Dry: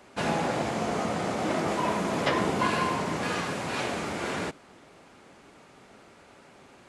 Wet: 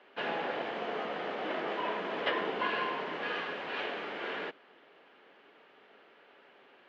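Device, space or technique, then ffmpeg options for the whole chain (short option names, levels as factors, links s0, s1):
phone earpiece: -af "highpass=340,equalizer=f=440:t=q:w=4:g=5,equalizer=f=1700:t=q:w=4:g=6,equalizer=f=3000:t=q:w=4:g=7,lowpass=f=3700:w=0.5412,lowpass=f=3700:w=1.3066,volume=0.447"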